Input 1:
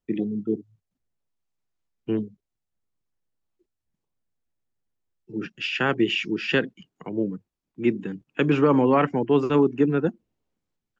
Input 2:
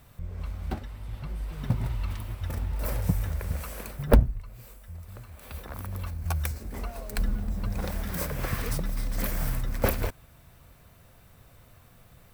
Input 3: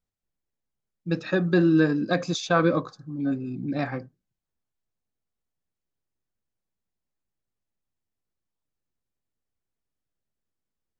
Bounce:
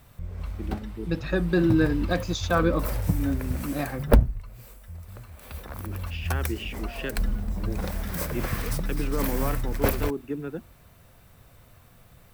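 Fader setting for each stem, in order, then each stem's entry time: -11.5, +1.0, -2.0 dB; 0.50, 0.00, 0.00 s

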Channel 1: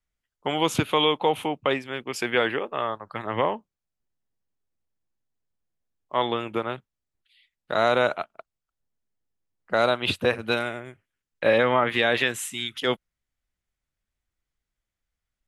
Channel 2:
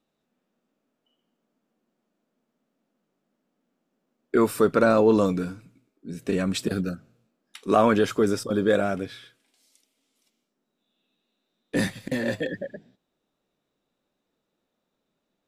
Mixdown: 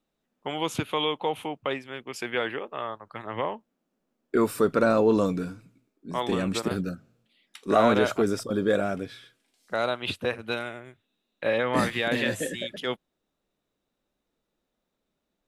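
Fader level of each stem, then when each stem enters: -5.5, -2.5 dB; 0.00, 0.00 s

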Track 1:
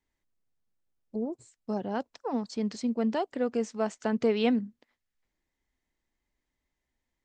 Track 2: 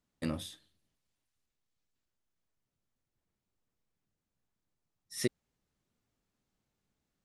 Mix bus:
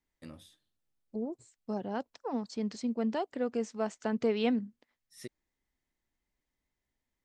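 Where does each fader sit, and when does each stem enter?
-3.5, -13.0 dB; 0.00, 0.00 s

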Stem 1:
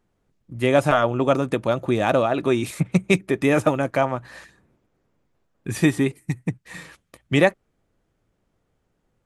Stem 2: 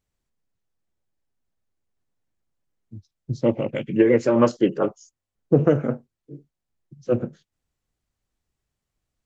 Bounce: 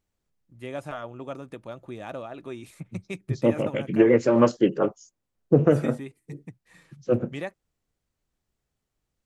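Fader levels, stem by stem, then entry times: -17.0, -1.0 dB; 0.00, 0.00 s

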